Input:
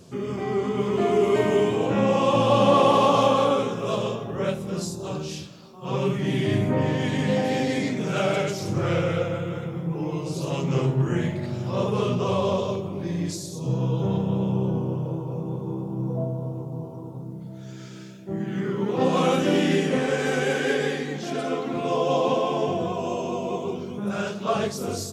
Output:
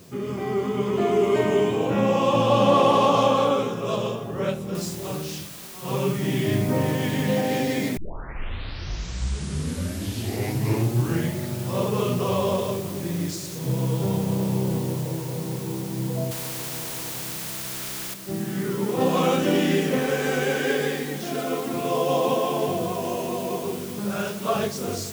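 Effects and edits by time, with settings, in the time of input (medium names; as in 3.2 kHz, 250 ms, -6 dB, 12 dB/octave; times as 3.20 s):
4.75 s: noise floor step -56 dB -41 dB
7.97 s: tape start 3.33 s
16.31–18.14 s: spectrum-flattening compressor 2:1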